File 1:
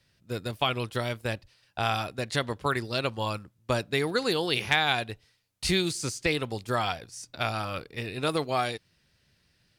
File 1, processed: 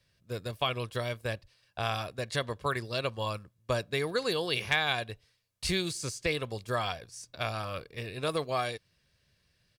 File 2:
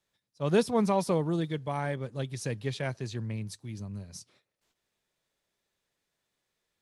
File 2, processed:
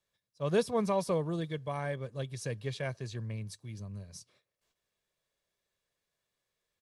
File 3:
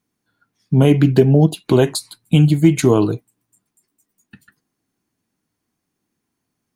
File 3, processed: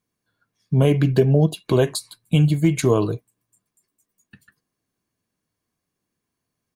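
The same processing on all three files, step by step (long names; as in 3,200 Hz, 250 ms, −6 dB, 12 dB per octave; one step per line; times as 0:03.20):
comb filter 1.8 ms, depth 35%
level −4 dB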